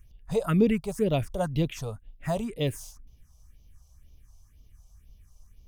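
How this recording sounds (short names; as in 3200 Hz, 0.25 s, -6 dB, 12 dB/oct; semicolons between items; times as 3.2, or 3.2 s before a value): phasing stages 4, 2 Hz, lowest notch 290–1600 Hz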